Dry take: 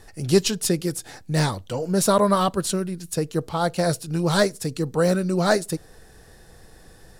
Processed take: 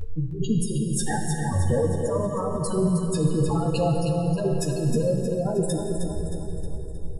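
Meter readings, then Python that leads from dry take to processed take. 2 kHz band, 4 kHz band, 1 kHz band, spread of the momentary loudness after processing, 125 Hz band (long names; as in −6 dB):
−10.0 dB, −10.5 dB, −6.5 dB, 8 LU, +2.5 dB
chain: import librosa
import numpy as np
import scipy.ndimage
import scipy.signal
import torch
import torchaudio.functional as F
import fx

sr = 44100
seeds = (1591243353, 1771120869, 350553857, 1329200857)

p1 = fx.over_compress(x, sr, threshold_db=-31.0, ratio=-1.0)
p2 = fx.high_shelf(p1, sr, hz=2100.0, db=-8.5)
p3 = fx.leveller(p2, sr, passes=3)
p4 = fx.spec_gate(p3, sr, threshold_db=-10, keep='strong')
p5 = p4 * (1.0 - 0.66 / 2.0 + 0.66 / 2.0 * np.cos(2.0 * np.pi * 1.8 * (np.arange(len(p4)) / sr)))
p6 = fx.doubler(p5, sr, ms=13.0, db=-3.5)
p7 = p6 + fx.echo_feedback(p6, sr, ms=313, feedback_pct=49, wet_db=-7, dry=0)
y = fx.rev_plate(p7, sr, seeds[0], rt60_s=3.1, hf_ratio=0.8, predelay_ms=0, drr_db=2.5)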